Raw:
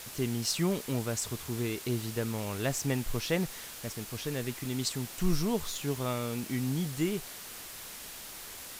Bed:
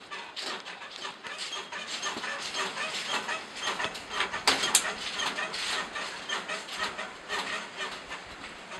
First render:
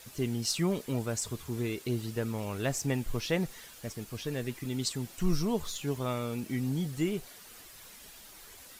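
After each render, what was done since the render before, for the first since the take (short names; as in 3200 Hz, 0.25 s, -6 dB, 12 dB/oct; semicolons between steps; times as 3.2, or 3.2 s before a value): denoiser 9 dB, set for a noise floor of -45 dBFS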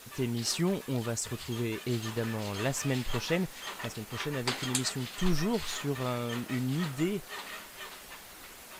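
add bed -9 dB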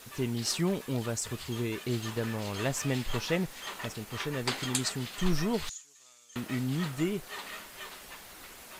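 5.69–6.36 band-pass 6800 Hz, Q 4.9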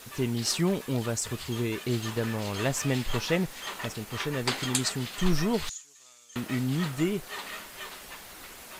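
gain +3 dB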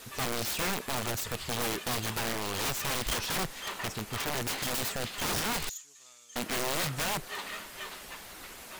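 self-modulated delay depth 0.19 ms; wrapped overs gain 26 dB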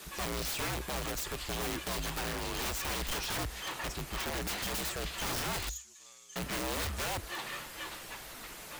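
frequency shift -62 Hz; soft clip -29.5 dBFS, distortion -11 dB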